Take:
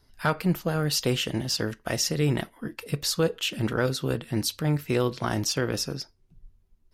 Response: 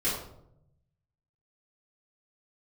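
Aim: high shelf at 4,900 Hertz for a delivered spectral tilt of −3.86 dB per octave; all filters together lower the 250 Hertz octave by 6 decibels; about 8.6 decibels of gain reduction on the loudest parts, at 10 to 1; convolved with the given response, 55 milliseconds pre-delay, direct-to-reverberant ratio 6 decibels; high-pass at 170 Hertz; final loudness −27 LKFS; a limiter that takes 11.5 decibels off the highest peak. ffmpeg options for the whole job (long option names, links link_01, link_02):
-filter_complex "[0:a]highpass=170,equalizer=frequency=250:width_type=o:gain=-7,highshelf=frequency=4900:gain=-4.5,acompressor=threshold=-30dB:ratio=10,alimiter=level_in=3.5dB:limit=-24dB:level=0:latency=1,volume=-3.5dB,asplit=2[link_01][link_02];[1:a]atrim=start_sample=2205,adelay=55[link_03];[link_02][link_03]afir=irnorm=-1:irlink=0,volume=-15dB[link_04];[link_01][link_04]amix=inputs=2:normalize=0,volume=10.5dB"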